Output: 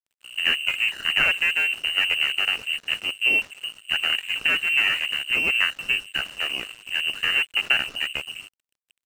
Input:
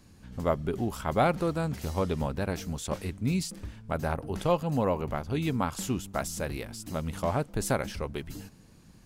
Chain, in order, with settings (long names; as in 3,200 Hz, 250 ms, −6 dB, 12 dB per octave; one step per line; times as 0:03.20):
lower of the sound and its delayed copy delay 0.78 ms
voice inversion scrambler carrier 2,900 Hz
dead-zone distortion −46.5 dBFS
level +7.5 dB